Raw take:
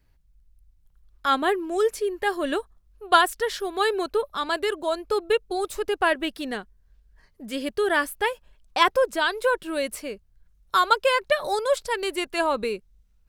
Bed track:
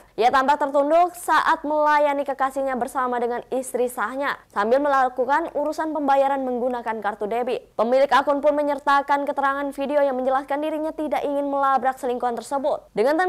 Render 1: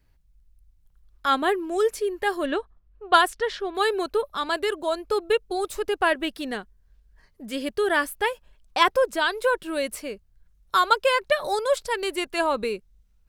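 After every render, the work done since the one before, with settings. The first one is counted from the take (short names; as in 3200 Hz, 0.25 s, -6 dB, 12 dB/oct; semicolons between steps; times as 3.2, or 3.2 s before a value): 2.46–3.75 low-pass opened by the level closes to 2100 Hz, open at -13.5 dBFS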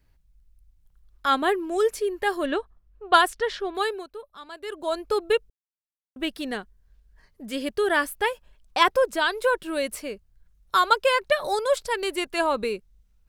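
3.71–4.96 dip -15 dB, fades 0.36 s; 5.5–6.16 mute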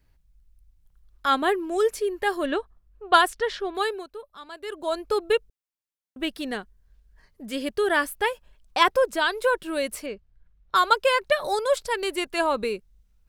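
10.06–10.87 low-pass opened by the level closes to 2800 Hz, open at -18.5 dBFS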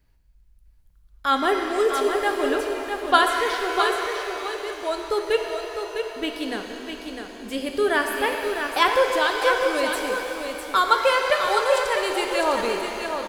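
echo 0.654 s -6.5 dB; shimmer reverb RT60 3 s, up +7 st, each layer -8 dB, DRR 3.5 dB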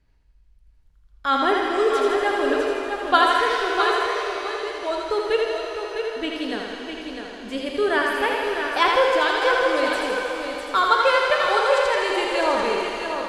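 air absorption 60 m; thinning echo 81 ms, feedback 66%, high-pass 340 Hz, level -4 dB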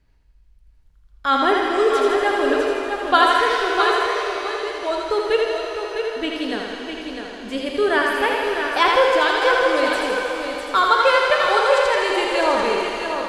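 gain +2.5 dB; limiter -3 dBFS, peak gain reduction 1.5 dB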